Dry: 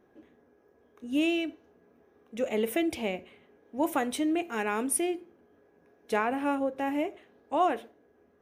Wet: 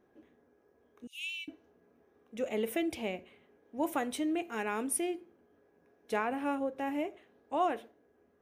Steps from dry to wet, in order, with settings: 1.07–1.48 steep high-pass 2200 Hz 96 dB/oct; gain -4.5 dB

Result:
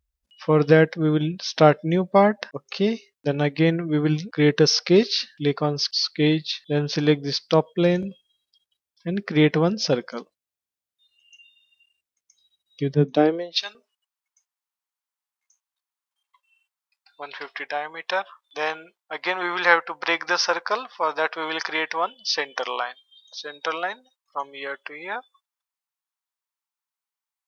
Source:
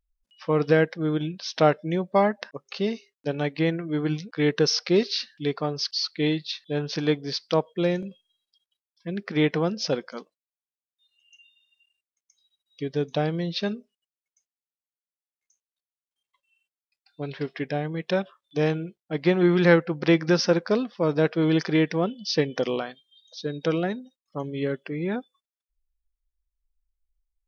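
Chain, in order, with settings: high-pass sweep 66 Hz -> 960 Hz, 12.68–13.64; 12.94–13.75 three-band expander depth 100%; gain +4 dB

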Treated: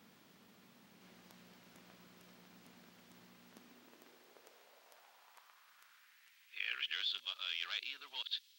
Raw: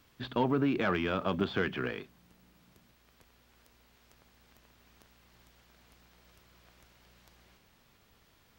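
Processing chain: whole clip reversed; high-pass sweep 200 Hz -> 3700 Hz, 3.46–7.09

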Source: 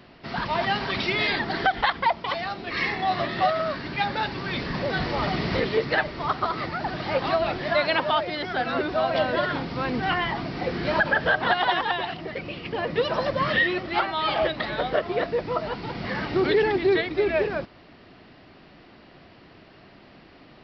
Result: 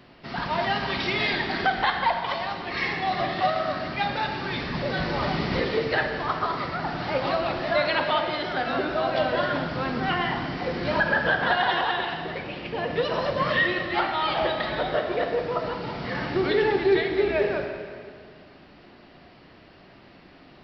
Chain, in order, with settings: plate-style reverb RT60 2.1 s, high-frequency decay 0.9×, DRR 3.5 dB; gain -2 dB

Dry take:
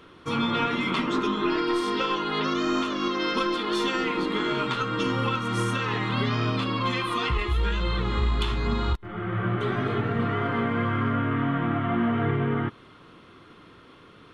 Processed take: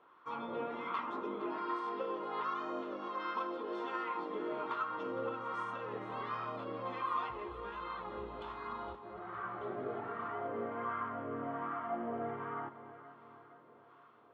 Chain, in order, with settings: wah 1.3 Hz 520–1100 Hz, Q 2.5; echo with dull and thin repeats by turns 0.231 s, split 1000 Hz, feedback 73%, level -10 dB; gain -4.5 dB

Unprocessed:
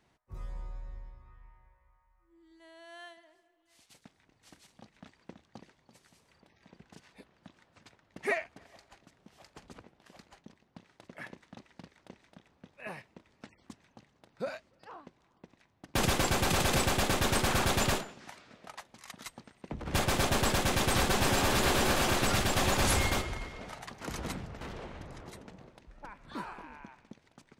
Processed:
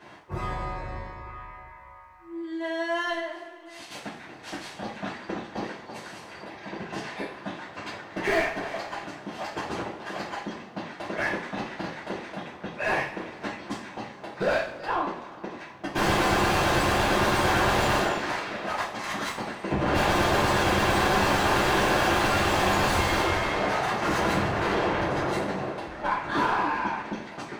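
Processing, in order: overdrive pedal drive 34 dB, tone 1200 Hz, clips at -16.5 dBFS; two-slope reverb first 0.43 s, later 2.1 s, from -19 dB, DRR -9.5 dB; gain -7 dB

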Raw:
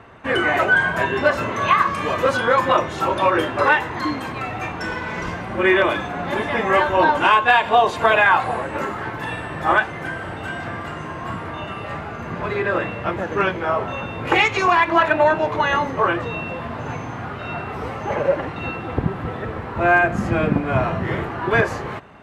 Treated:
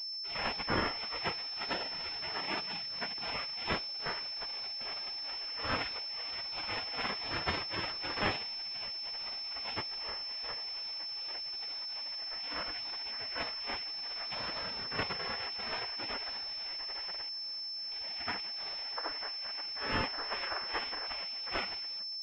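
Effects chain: minimum comb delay 0.63 ms; 2.34–3.28 HPF 270 Hz 24 dB/oct; spectral gate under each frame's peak -20 dB weak; 14.52–14.99 compressor 6:1, threshold -35 dBFS, peak gain reduction 8 dB; 17.29–17.92 tube stage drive 54 dB, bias 0.75; tremolo 2.4 Hz, depth 41%; pulse-width modulation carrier 5300 Hz

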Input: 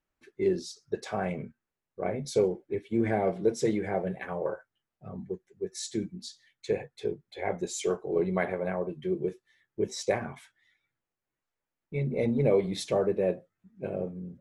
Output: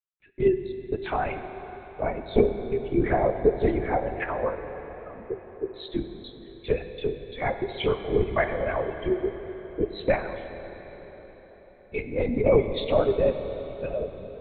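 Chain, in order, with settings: per-bin expansion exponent 1.5; HPF 290 Hz 24 dB/oct; LPC vocoder at 8 kHz whisper; in parallel at +1 dB: compressor, threshold -39 dBFS, peak gain reduction 17.5 dB; on the sum: plate-style reverb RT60 4.8 s, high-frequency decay 0.85×, DRR 7.5 dB; gain +5.5 dB

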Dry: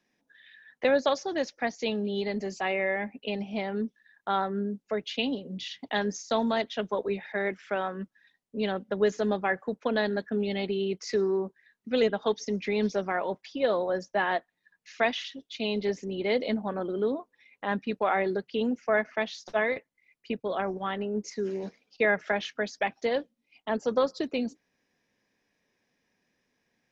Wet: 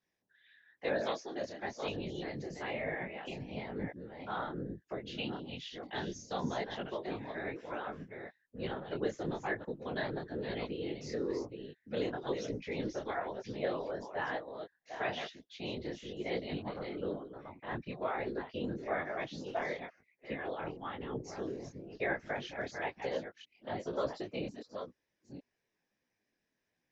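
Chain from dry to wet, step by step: reverse delay 0.488 s, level -6.5 dB; whisperiser; detuned doubles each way 36 cents; gain -6.5 dB

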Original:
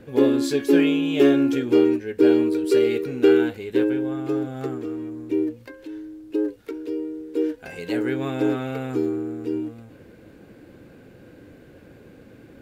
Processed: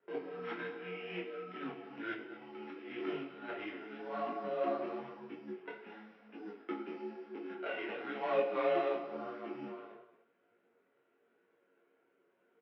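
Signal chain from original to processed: sample sorter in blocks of 8 samples; gate with hold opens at -34 dBFS; negative-ratio compressor -28 dBFS, ratio -1; mistuned SSB -98 Hz 530–2800 Hz; resonator bank F#2 major, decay 0.27 s; outdoor echo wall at 39 m, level -13 dB; reverb, pre-delay 3 ms, DRR 8.5 dB; detuned doubles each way 33 cents; gain +13 dB

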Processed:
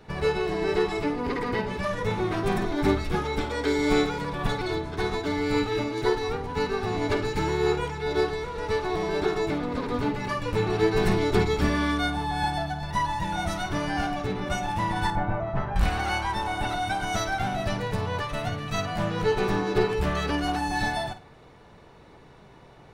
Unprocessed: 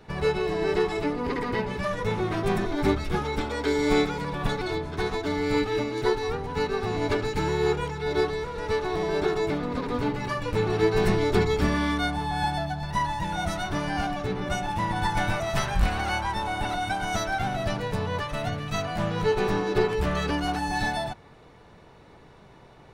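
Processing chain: 15.1–15.76 LPF 1100 Hz 12 dB/oct; flutter echo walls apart 8.9 m, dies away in 0.27 s

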